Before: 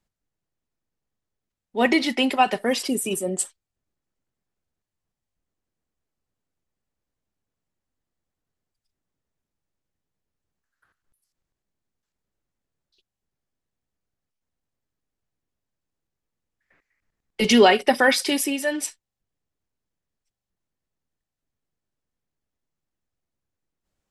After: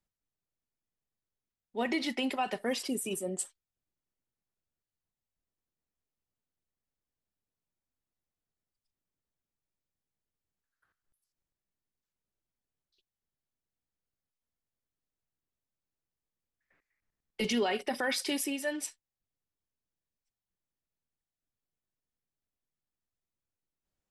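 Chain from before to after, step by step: peak limiter -12.5 dBFS, peak gain reduction 9 dB; trim -9 dB

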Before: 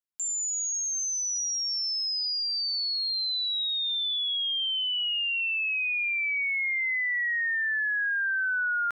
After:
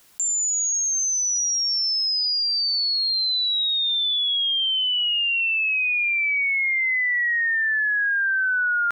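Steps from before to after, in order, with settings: level flattener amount 50%; trim +5.5 dB

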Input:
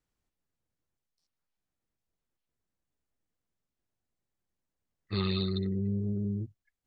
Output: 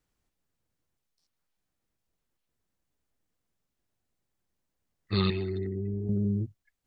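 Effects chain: 5.30–6.09 s: static phaser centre 800 Hz, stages 8; trim +4.5 dB

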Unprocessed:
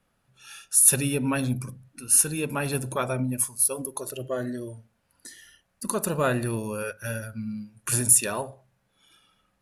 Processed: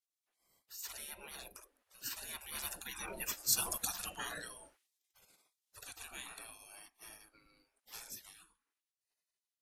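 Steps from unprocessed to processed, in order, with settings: Doppler pass-by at 3.80 s, 12 m/s, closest 2.6 m; spectral gate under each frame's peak -25 dB weak; trim +15 dB

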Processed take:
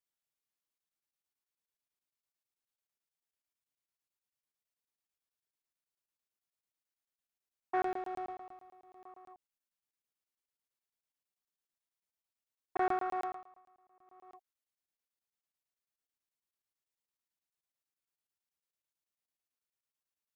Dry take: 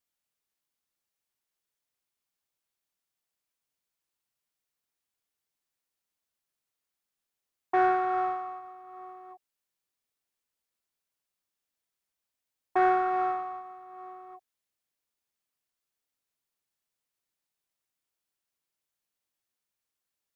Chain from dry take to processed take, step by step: 7.82–9.04 s: peaking EQ 1.2 kHz -10.5 dB 1.1 oct; 13.21–14.31 s: dip -14 dB, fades 0.25 s; crackling interface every 0.11 s, samples 1024, zero, from 0.78 s; trim -7.5 dB

